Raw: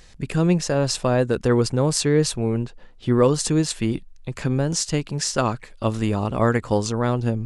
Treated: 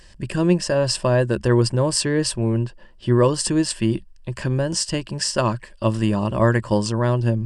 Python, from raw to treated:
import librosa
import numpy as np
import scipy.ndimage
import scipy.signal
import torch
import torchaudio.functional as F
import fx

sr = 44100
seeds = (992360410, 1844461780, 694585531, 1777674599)

y = fx.ripple_eq(x, sr, per_octave=1.3, db=9)